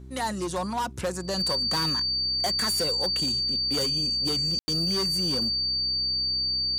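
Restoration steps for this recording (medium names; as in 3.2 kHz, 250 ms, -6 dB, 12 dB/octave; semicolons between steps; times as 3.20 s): clip repair -21 dBFS; de-hum 64.7 Hz, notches 6; band-stop 4.6 kHz, Q 30; room tone fill 4.59–4.68 s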